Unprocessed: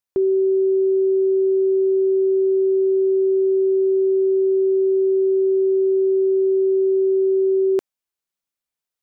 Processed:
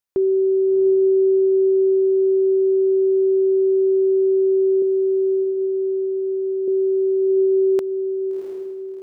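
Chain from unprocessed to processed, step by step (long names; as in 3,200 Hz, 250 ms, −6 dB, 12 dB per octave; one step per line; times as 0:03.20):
0:04.82–0:06.68: low-shelf EQ 430 Hz −9.5 dB
on a send: feedback delay with all-pass diffusion 707 ms, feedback 44%, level −7 dB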